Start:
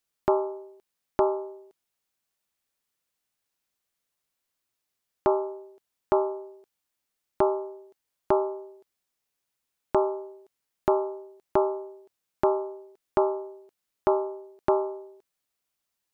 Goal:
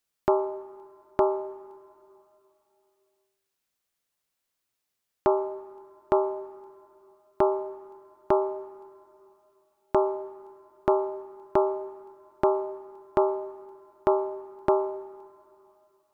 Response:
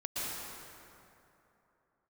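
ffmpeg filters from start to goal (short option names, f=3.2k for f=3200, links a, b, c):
-filter_complex "[0:a]asplit=2[a][b];[1:a]atrim=start_sample=2205,lowshelf=f=310:g=-8[c];[b][c]afir=irnorm=-1:irlink=0,volume=-21.5dB[d];[a][d]amix=inputs=2:normalize=0"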